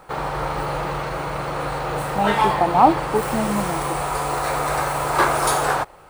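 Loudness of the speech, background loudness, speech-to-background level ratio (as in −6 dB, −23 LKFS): −21.5 LKFS, −23.0 LKFS, 1.5 dB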